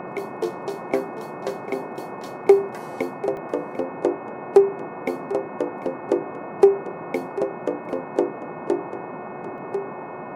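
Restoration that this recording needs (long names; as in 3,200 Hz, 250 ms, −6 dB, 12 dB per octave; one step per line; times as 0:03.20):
hum removal 363.6 Hz, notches 7
repair the gap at 0:03.37/0:09.58, 1.1 ms
noise reduction from a noise print 30 dB
echo removal 745 ms −15.5 dB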